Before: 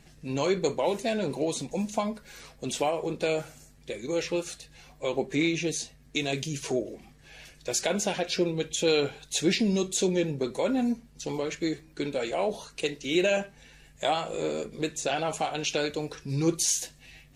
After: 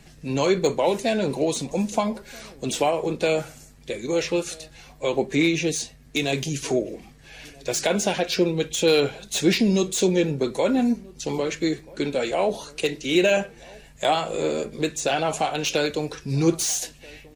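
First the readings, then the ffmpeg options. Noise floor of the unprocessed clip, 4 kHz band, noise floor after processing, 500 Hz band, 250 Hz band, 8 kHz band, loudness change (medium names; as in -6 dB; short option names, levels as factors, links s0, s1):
-56 dBFS, +4.5 dB, -49 dBFS, +5.5 dB, +5.5 dB, +3.0 dB, +5.0 dB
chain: -filter_complex "[0:a]acrossover=split=300|2500[s0][s1][s2];[s2]asoftclip=type=hard:threshold=0.0398[s3];[s0][s1][s3]amix=inputs=3:normalize=0,asplit=2[s4][s5];[s5]adelay=1283,volume=0.0708,highshelf=f=4000:g=-28.9[s6];[s4][s6]amix=inputs=2:normalize=0,volume=1.88"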